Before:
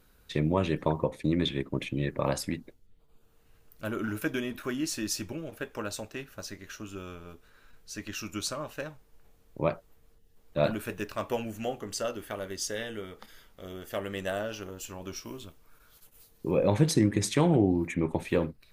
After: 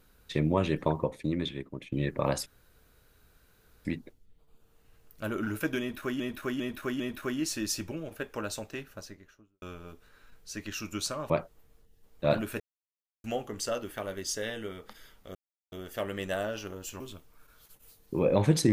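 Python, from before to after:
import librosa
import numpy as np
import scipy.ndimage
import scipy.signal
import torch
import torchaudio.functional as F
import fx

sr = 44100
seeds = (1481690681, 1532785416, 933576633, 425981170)

y = fx.studio_fade_out(x, sr, start_s=6.15, length_s=0.88)
y = fx.edit(y, sr, fx.fade_out_to(start_s=0.82, length_s=1.1, floor_db=-12.5),
    fx.insert_room_tone(at_s=2.46, length_s=1.39),
    fx.repeat(start_s=4.41, length_s=0.4, count=4),
    fx.cut(start_s=8.71, length_s=0.92),
    fx.silence(start_s=10.93, length_s=0.64),
    fx.insert_silence(at_s=13.68, length_s=0.37),
    fx.cut(start_s=14.96, length_s=0.36), tone=tone)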